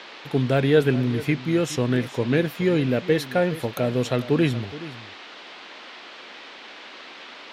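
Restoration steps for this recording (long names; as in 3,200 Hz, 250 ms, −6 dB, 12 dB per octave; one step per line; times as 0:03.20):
noise reduction from a noise print 26 dB
echo removal 419 ms −16 dB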